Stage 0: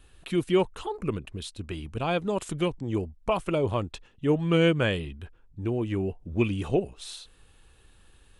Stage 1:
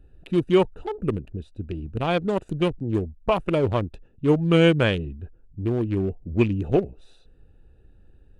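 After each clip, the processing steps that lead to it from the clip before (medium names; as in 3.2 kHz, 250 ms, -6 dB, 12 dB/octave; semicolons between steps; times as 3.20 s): local Wiener filter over 41 samples; trim +5 dB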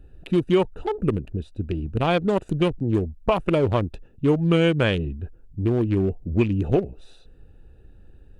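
compression 2.5:1, threshold -22 dBFS, peak gain reduction 7.5 dB; trim +4.5 dB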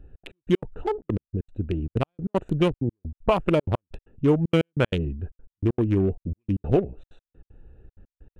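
local Wiener filter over 9 samples; trance gate "xx.x..x.xxx" 192 bpm -60 dB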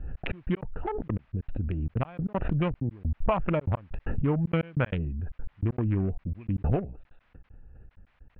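low-pass 2.4 kHz 24 dB/octave; peaking EQ 380 Hz -9 dB 1 oct; swell ahead of each attack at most 22 dB/s; trim -2.5 dB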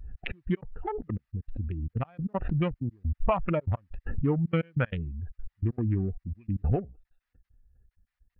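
expander on every frequency bin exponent 1.5; trim +1.5 dB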